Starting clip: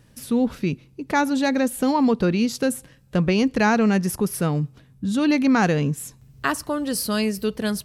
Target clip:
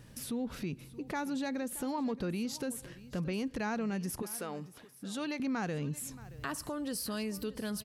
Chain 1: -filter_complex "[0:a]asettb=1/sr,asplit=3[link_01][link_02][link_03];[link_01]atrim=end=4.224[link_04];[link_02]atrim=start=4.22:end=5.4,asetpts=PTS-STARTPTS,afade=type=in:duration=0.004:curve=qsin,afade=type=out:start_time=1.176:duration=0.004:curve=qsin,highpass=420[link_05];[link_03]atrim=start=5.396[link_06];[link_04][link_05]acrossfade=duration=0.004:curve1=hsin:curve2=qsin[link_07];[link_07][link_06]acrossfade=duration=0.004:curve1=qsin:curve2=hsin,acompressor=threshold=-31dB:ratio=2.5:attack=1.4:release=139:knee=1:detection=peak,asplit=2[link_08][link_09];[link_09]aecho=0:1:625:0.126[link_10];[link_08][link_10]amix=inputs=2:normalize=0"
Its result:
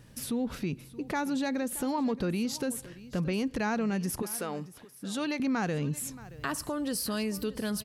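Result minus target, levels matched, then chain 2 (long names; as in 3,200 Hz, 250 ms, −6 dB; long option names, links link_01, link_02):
downward compressor: peak gain reduction −5 dB
-filter_complex "[0:a]asettb=1/sr,asplit=3[link_01][link_02][link_03];[link_01]atrim=end=4.224[link_04];[link_02]atrim=start=4.22:end=5.4,asetpts=PTS-STARTPTS,afade=type=in:duration=0.004:curve=qsin,afade=type=out:start_time=1.176:duration=0.004:curve=qsin,highpass=420[link_05];[link_03]atrim=start=5.396[link_06];[link_04][link_05]acrossfade=duration=0.004:curve1=hsin:curve2=qsin[link_07];[link_07][link_06]acrossfade=duration=0.004:curve1=qsin:curve2=hsin,acompressor=threshold=-39dB:ratio=2.5:attack=1.4:release=139:knee=1:detection=peak,asplit=2[link_08][link_09];[link_09]aecho=0:1:625:0.126[link_10];[link_08][link_10]amix=inputs=2:normalize=0"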